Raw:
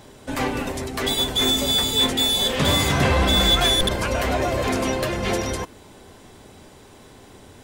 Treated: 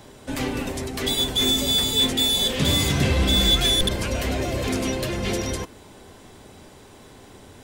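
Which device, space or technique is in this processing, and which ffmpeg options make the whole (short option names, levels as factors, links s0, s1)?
one-band saturation: -filter_complex "[0:a]acrossover=split=480|2100[s0][s1][s2];[s1]asoftclip=type=tanh:threshold=0.0158[s3];[s0][s3][s2]amix=inputs=3:normalize=0"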